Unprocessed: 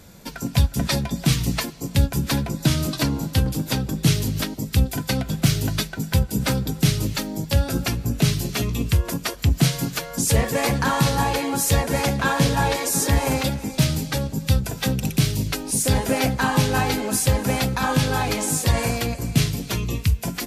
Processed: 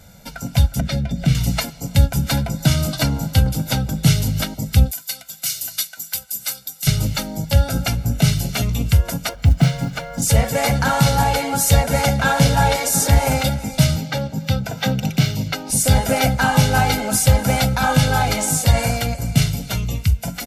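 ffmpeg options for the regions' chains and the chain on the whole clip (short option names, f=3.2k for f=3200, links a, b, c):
-filter_complex "[0:a]asettb=1/sr,asplit=3[a][b][c];[a]atrim=end=0.804[d];[b]atrim=start=0.8:end=1.35,asetpts=PTS-STARTPTS,afade=t=in:d=0.004:c=qsin,afade=t=out:st=0.546:d=0.004:c=qsin,lowpass=f=1.7k:p=1,equalizer=f=950:t=o:w=0.91:g=-13,acompressor=mode=upward:threshold=-21dB:ratio=2.5:attack=3.2:release=140:knee=2.83:detection=peak[e];[c]atrim=start=1.346[f];[d][e]acrossfade=d=0.004:c1=hsin:c2=qsin[g];[g][f]acrossfade=d=0.004:c1=qsin:c2=hsin,asettb=1/sr,asplit=3[h][i][j];[h]atrim=end=4.914[k];[i]atrim=start=4.91:end=6.87,asetpts=PTS-STARTPTS,afade=t=in:d=0.004:c=qsin,afade=t=out:st=1.956:d=0.004:c=qsin,aderivative,bandreject=f=3.3k:w=26[l];[j]atrim=start=6.866[m];[k][l]acrossfade=d=0.004:c1=hsin:c2=qsin[n];[n][m]acrossfade=d=0.004:c1=qsin:c2=hsin,asettb=1/sr,asplit=3[o][p][q];[o]atrim=end=9.294[r];[p]atrim=start=9.29:end=10.22,asetpts=PTS-STARTPTS,afade=t=in:d=0.004:c=qsin,afade=t=out:st=0.926:d=0.004:c=qsin,aemphasis=mode=reproduction:type=75fm,acrusher=bits=8:mode=log:mix=0:aa=0.000001[s];[q]atrim=start=10.216[t];[r][s]acrossfade=d=0.004:c1=hsin:c2=qsin[u];[u][t]acrossfade=d=0.004:c1=qsin:c2=hsin,asettb=1/sr,asplit=3[v][w][x];[v]atrim=end=13.964[y];[w]atrim=start=13.96:end=15.7,asetpts=PTS-STARTPTS,afade=t=in:d=0.004:c=qsin,afade=t=out:st=1.736:d=0.004:c=qsin,highpass=140,equalizer=f=10k:w=1:g=-15[z];[x]atrim=start=15.696[aa];[y][z]acrossfade=d=0.004:c1=hsin:c2=qsin[ab];[ab][aa]acrossfade=d=0.004:c1=qsin:c2=hsin,aecho=1:1:1.4:0.64,dynaudnorm=f=130:g=13:m=11.5dB,volume=-1dB"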